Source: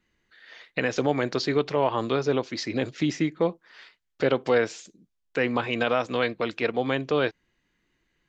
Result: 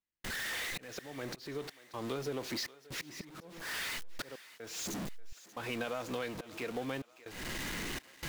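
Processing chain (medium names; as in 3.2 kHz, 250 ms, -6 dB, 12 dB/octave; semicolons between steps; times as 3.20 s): jump at every zero crossing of -27 dBFS; compression 6:1, threshold -29 dBFS, peak gain reduction 12.5 dB; slow attack 297 ms; trance gate ".xxxxxx.xxx" 62 bpm -60 dB; on a send: thinning echo 585 ms, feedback 51%, high-pass 500 Hz, level -17 dB; on the sum: trim -5.5 dB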